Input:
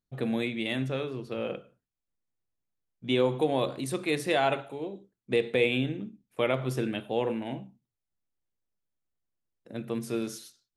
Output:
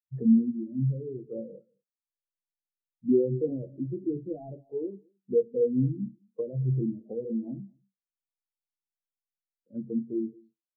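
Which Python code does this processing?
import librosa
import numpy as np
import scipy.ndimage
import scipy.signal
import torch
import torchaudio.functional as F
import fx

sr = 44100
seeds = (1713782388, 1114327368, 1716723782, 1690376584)

p1 = fx.power_curve(x, sr, exponent=0.7)
p2 = fx.env_lowpass_down(p1, sr, base_hz=360.0, full_db=-23.5)
p3 = fx.quant_dither(p2, sr, seeds[0], bits=6, dither='none')
p4 = p2 + (p3 * 10.0 ** (-11.5 / 20.0))
p5 = fx.doubler(p4, sr, ms=21.0, db=-11.0)
p6 = p5 + fx.echo_single(p5, sr, ms=219, db=-12.5, dry=0)
y = fx.spectral_expand(p6, sr, expansion=2.5)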